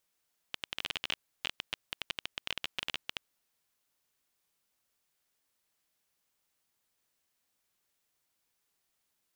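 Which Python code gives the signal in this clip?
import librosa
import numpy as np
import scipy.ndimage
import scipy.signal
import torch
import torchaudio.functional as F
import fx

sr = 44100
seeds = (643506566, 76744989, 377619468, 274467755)

y = fx.geiger_clicks(sr, seeds[0], length_s=2.75, per_s=17.0, level_db=-16.0)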